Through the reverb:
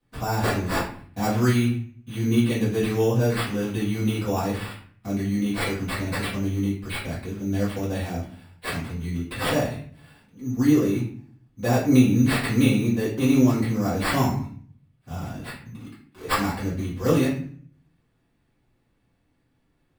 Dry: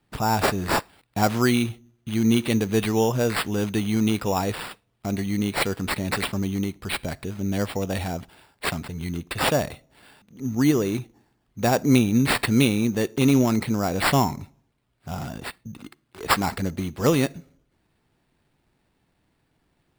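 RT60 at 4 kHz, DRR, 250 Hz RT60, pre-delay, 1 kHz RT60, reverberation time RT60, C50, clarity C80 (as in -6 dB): 0.35 s, -11.5 dB, 0.75 s, 4 ms, 0.50 s, 0.50 s, 5.5 dB, 10.0 dB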